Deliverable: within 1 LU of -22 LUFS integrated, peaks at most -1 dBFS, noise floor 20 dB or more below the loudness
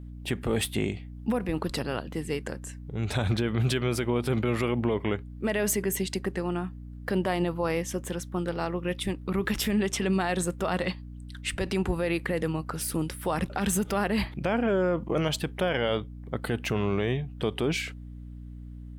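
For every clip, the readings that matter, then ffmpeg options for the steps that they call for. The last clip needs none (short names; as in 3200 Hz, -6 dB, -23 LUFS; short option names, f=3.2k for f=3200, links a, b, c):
hum 60 Hz; harmonics up to 300 Hz; hum level -39 dBFS; loudness -29.0 LUFS; peak -13.5 dBFS; loudness target -22.0 LUFS
-> -af "bandreject=f=60:t=h:w=6,bandreject=f=120:t=h:w=6,bandreject=f=180:t=h:w=6,bandreject=f=240:t=h:w=6,bandreject=f=300:t=h:w=6"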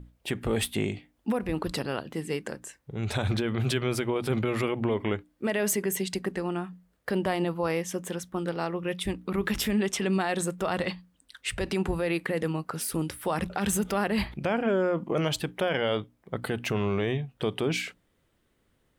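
hum none; loudness -29.5 LUFS; peak -14.0 dBFS; loudness target -22.0 LUFS
-> -af "volume=7.5dB"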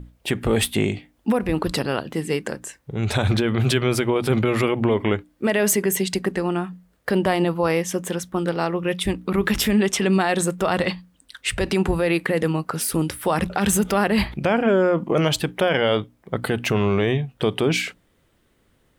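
loudness -22.0 LUFS; peak -6.5 dBFS; noise floor -63 dBFS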